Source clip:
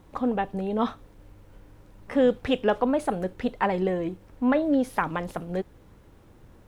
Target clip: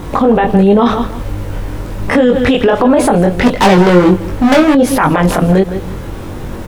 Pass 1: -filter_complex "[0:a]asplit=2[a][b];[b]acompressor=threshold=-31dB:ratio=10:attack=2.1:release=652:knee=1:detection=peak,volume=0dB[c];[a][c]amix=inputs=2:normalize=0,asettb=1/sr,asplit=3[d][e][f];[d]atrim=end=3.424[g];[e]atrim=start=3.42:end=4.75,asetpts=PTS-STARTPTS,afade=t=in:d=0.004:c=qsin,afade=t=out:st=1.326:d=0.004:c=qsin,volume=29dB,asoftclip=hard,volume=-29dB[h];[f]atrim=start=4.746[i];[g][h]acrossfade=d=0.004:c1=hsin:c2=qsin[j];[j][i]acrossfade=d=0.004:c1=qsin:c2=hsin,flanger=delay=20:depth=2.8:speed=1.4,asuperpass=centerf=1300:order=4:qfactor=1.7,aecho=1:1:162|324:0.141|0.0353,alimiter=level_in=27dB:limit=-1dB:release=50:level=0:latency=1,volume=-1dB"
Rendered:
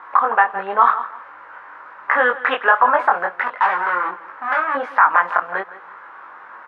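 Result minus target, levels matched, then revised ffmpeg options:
1000 Hz band +7.0 dB
-filter_complex "[0:a]asplit=2[a][b];[b]acompressor=threshold=-31dB:ratio=10:attack=2.1:release=652:knee=1:detection=peak,volume=0dB[c];[a][c]amix=inputs=2:normalize=0,asettb=1/sr,asplit=3[d][e][f];[d]atrim=end=3.424[g];[e]atrim=start=3.42:end=4.75,asetpts=PTS-STARTPTS,afade=t=in:d=0.004:c=qsin,afade=t=out:st=1.326:d=0.004:c=qsin,volume=29dB,asoftclip=hard,volume=-29dB[h];[f]atrim=start=4.746[i];[g][h]acrossfade=d=0.004:c1=hsin:c2=qsin[j];[j][i]acrossfade=d=0.004:c1=qsin:c2=hsin,flanger=delay=20:depth=2.8:speed=1.4,aecho=1:1:162|324:0.141|0.0353,alimiter=level_in=27dB:limit=-1dB:release=50:level=0:latency=1,volume=-1dB"

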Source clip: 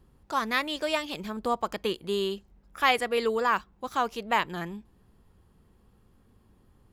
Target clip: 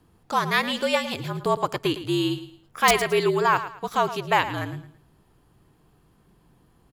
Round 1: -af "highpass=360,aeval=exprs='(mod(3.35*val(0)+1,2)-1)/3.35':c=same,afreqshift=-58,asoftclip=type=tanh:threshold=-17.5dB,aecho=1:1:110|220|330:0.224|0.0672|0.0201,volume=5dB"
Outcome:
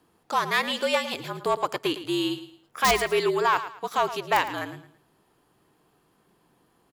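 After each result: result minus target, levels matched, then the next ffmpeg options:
soft clip: distortion +14 dB; 125 Hz band -7.5 dB
-af "highpass=360,aeval=exprs='(mod(3.35*val(0)+1,2)-1)/3.35':c=same,afreqshift=-58,asoftclip=type=tanh:threshold=-8dB,aecho=1:1:110|220|330:0.224|0.0672|0.0201,volume=5dB"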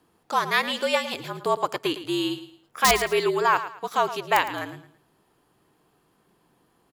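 125 Hz band -8.5 dB
-af "highpass=110,aeval=exprs='(mod(3.35*val(0)+1,2)-1)/3.35':c=same,afreqshift=-58,asoftclip=type=tanh:threshold=-8dB,aecho=1:1:110|220|330:0.224|0.0672|0.0201,volume=5dB"

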